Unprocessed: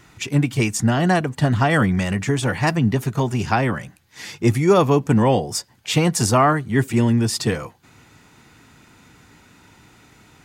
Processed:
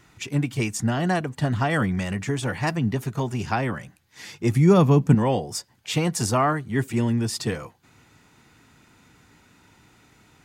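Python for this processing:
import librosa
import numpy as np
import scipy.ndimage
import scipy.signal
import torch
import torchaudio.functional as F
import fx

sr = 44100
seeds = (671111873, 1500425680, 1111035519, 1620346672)

y = fx.peak_eq(x, sr, hz=170.0, db=11.5, octaves=1.1, at=(4.56, 5.15))
y = y * librosa.db_to_amplitude(-5.5)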